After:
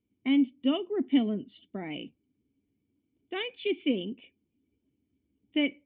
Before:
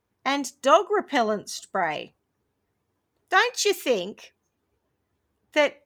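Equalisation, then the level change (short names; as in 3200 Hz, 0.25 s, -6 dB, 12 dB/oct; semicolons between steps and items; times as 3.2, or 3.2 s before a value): vocal tract filter i; +8.0 dB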